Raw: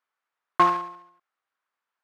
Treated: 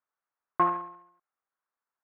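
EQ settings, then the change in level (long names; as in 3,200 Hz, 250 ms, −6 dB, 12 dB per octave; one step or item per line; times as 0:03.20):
low-pass filter 1,900 Hz 12 dB per octave
high-frequency loss of the air 320 metres
−3.5 dB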